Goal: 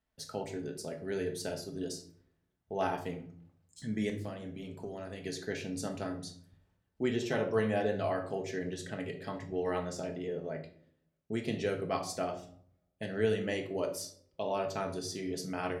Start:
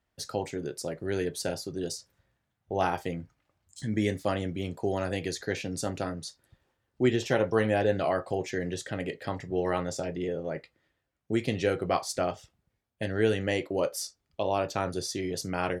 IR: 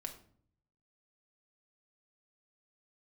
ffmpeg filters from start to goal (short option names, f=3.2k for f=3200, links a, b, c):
-filter_complex "[0:a]asettb=1/sr,asplit=3[a][b][c];[a]atrim=end=4.094[d];[b]atrim=start=4.09:end=5.25,asetpts=PTS-STARTPTS,afade=t=in:d=0.004:c=qsin,afade=t=out:st=1.156:d=0.004:c=qsin,acompressor=threshold=-33dB:ratio=6[e];[c]atrim=start=5.246[f];[d][e]acrossfade=d=0.004:c1=hsin:c2=qsin[g];[g][f]acrossfade=d=0.004:c1=qsin:c2=hsin[h];[1:a]atrim=start_sample=2205[i];[h][i]afir=irnorm=-1:irlink=0,volume=-3dB"